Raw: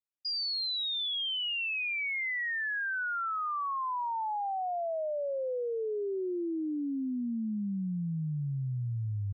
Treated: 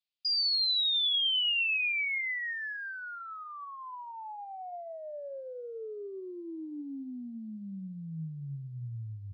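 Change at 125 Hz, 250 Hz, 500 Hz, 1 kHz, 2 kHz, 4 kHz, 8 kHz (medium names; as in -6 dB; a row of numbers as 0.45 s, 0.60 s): -6.5 dB, -7.0 dB, -8.0 dB, -9.0 dB, 0.0 dB, +5.0 dB, no reading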